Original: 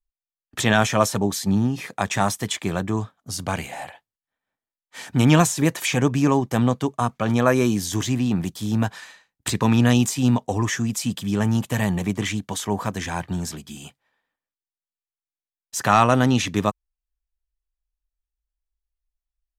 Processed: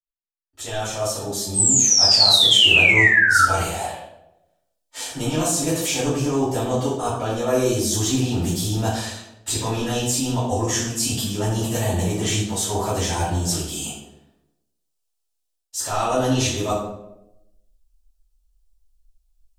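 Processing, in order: fade-in on the opening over 5.21 s; graphic EQ 125/250/1000/2000/8000 Hz -10/-10/-4/-11/+4 dB; reverse; compression 6:1, threshold -33 dBFS, peak gain reduction 15 dB; reverse; painted sound fall, 1.54–3.43 s, 1.3–8.4 kHz -28 dBFS; reverberation RT60 0.90 s, pre-delay 3 ms, DRR -11.5 dB

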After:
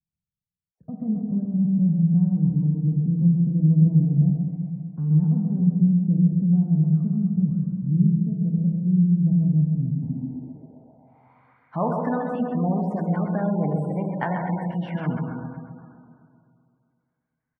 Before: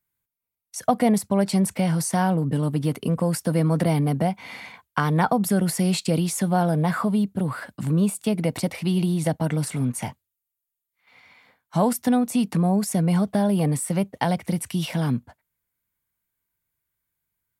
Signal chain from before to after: feedback delay 132 ms, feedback 51%, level -5.5 dB; plate-style reverb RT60 2.4 s, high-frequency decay 0.35×, DRR 2 dB; spectral gate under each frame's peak -30 dB strong; low-pass sweep 170 Hz -> 1.6 kHz, 10.01–11.70 s; trim -6.5 dB

